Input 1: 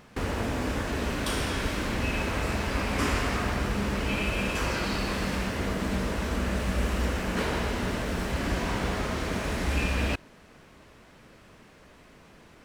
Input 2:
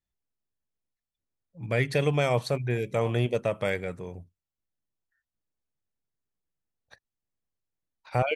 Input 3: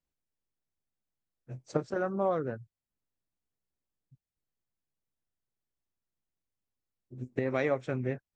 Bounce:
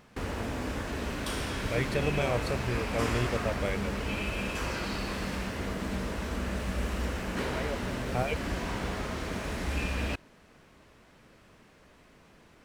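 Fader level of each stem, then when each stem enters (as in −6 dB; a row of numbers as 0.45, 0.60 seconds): −4.5, −5.5, −9.0 decibels; 0.00, 0.00, 0.00 seconds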